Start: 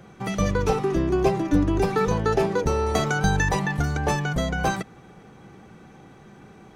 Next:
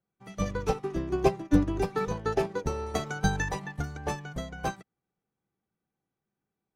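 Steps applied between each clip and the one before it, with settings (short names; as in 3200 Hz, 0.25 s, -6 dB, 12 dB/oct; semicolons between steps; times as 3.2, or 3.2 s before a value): upward expander 2.5:1, over -42 dBFS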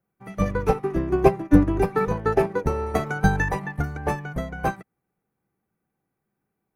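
band shelf 4900 Hz -10.5 dB; gain +7 dB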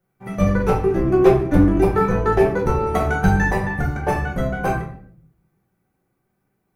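in parallel at +2 dB: compressor, threshold -26 dBFS, peak gain reduction 16.5 dB; on the sum: hard clip -6.5 dBFS, distortion -19 dB; shoebox room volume 81 m³, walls mixed, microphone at 0.97 m; gain -3.5 dB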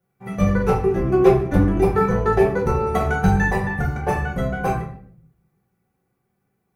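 notch comb 310 Hz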